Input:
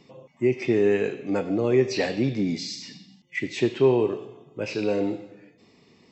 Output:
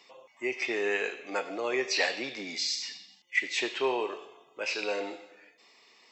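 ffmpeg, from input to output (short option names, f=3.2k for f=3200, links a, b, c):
-af "highpass=890,volume=3.5dB"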